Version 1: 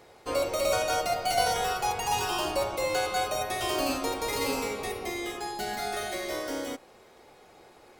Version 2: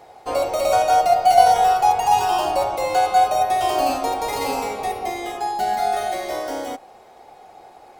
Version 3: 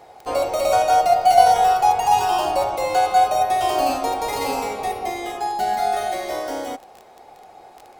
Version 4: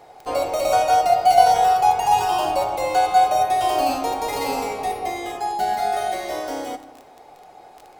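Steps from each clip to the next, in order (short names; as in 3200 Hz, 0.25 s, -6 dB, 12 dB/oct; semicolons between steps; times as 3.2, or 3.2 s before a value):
bell 760 Hz +14 dB 0.54 oct; gain +2 dB
crackle 12/s -29 dBFS
reverb RT60 1.1 s, pre-delay 7 ms, DRR 10.5 dB; gain -1 dB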